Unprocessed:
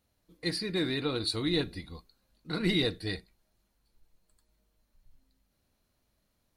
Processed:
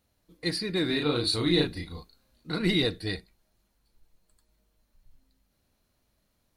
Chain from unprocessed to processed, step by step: 0.86–2.51 s: doubling 34 ms -2 dB; trim +2.5 dB

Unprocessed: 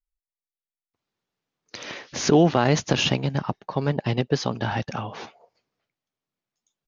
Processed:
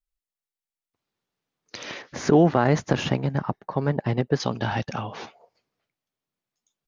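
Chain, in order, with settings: 2.02–4.40 s: high-order bell 4.1 kHz -9 dB

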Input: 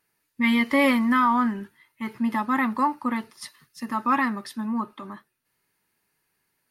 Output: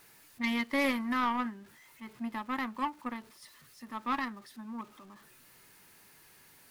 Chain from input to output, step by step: jump at every zero crossing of -25 dBFS; power-law waveshaper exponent 2; trim -6.5 dB

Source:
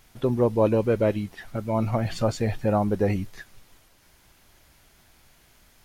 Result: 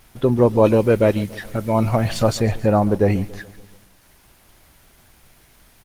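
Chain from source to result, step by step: 0.64–2.40 s: treble shelf 2.3 kHz +6 dB; feedback delay 142 ms, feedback 57%, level -19.5 dB; trim +6.5 dB; Opus 24 kbps 48 kHz

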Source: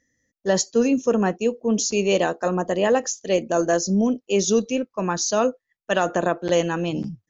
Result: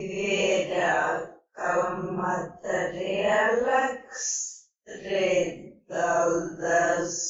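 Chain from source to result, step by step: graphic EQ 125/250/500/2000/4000 Hz -7/-10/-4/+4/-11 dB; Paulstretch 4×, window 0.05 s, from 2.02 s; expander -41 dBFS

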